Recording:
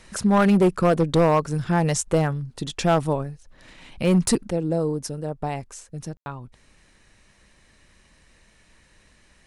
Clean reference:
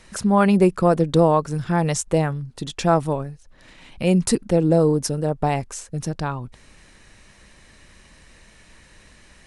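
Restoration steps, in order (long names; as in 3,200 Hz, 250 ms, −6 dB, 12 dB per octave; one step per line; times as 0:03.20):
clipped peaks rebuilt −12.5 dBFS
ambience match 0:06.17–0:06.26
level 0 dB, from 0:04.50 +7 dB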